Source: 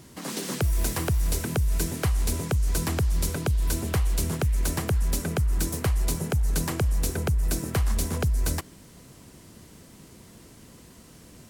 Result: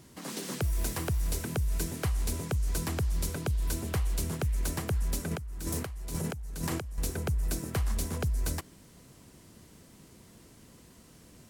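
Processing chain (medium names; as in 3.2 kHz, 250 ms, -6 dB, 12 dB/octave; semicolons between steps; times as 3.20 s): 5.31–6.98 s: compressor with a negative ratio -30 dBFS, ratio -1; trim -5.5 dB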